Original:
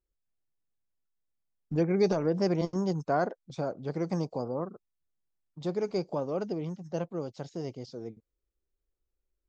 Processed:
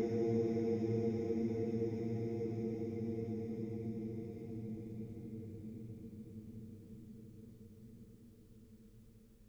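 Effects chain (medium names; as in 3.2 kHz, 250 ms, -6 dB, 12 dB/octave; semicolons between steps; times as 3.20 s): Paulstretch 49×, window 0.50 s, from 8.19 s; in parallel at -2.5 dB: compression, threshold -59 dBFS, peak gain reduction 14 dB; on the sum: trim +12.5 dB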